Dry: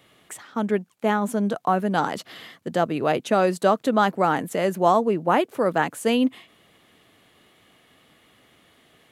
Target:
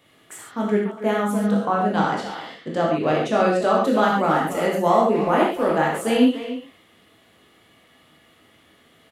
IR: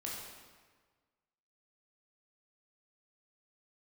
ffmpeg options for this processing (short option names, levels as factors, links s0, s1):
-filter_complex "[0:a]asettb=1/sr,asplit=3[s0][s1][s2];[s0]atrim=end=1.594[s3];[s1]atrim=start=1.59:end=3.77,asetpts=PTS-STARTPTS,afade=t=in:d=0.004:c=qsin,afade=t=out:st=2.176:d=0.004:c=qsin,lowpass=7400[s4];[s2]atrim=start=3.766[s5];[s3][s4]acrossfade=d=0.004:c1=hsin:c2=qsin[s6];[s6][s5]acrossfade=d=0.004:c1=qsin:c2=hsin,asplit=2[s7][s8];[s8]adelay=290,highpass=300,lowpass=3400,asoftclip=type=hard:threshold=0.178,volume=0.316[s9];[s7][s9]amix=inputs=2:normalize=0[s10];[1:a]atrim=start_sample=2205,atrim=end_sample=6615[s11];[s10][s11]afir=irnorm=-1:irlink=0,volume=1.26"